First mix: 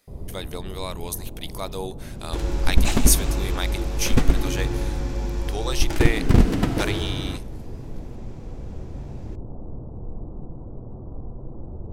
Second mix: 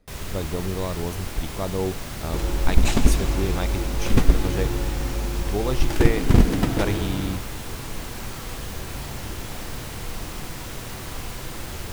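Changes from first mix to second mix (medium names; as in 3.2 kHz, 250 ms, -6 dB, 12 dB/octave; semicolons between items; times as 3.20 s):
speech: add tilt EQ -4.5 dB/octave; first sound: remove Gaussian low-pass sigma 13 samples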